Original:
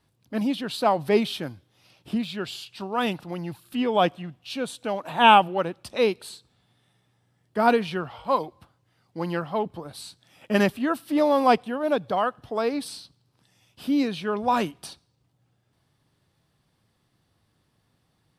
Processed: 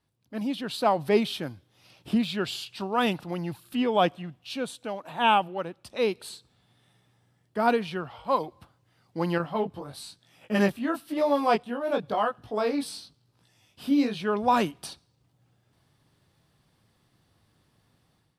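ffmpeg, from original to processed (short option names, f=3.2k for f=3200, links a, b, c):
-filter_complex "[0:a]asettb=1/sr,asplit=3[a][b][c];[a]atrim=end=9.384[d];[b]atrim=start=9.38:end=14.2,asetpts=PTS-STARTPTS,afade=t=in:d=0.004:c=qsin,afade=t=out:st=4.816:d=0.004:c=qsin,flanger=delay=17.5:depth=4.1:speed=1[e];[c]atrim=start=14.196[f];[d][e]acrossfade=d=0.004:c1=hsin:c2=qsin[g];[g][f]acrossfade=d=0.004:c1=qsin:c2=hsin,dynaudnorm=f=330:g=3:m=10.5dB,volume=-8dB"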